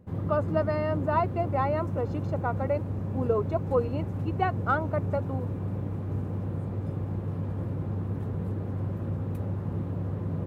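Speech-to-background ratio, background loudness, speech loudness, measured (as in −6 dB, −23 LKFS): 2.5 dB, −32.5 LKFS, −30.0 LKFS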